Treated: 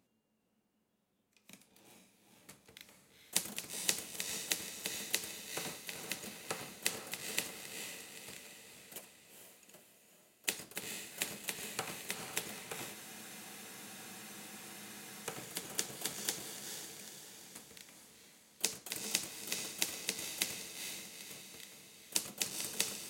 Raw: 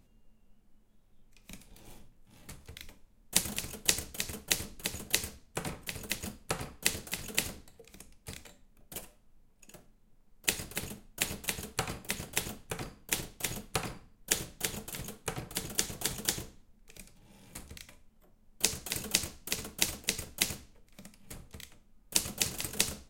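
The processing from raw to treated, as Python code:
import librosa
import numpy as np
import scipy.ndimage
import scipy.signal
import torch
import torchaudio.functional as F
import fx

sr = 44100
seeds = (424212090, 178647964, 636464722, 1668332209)

y = scipy.signal.sosfilt(scipy.signal.butter(2, 200.0, 'highpass', fs=sr, output='sos'), x)
y = fx.echo_diffused(y, sr, ms=454, feedback_pct=53, wet_db=-5.5)
y = fx.spec_freeze(y, sr, seeds[0], at_s=12.96, hold_s=2.29)
y = y * librosa.db_to_amplitude(-6.0)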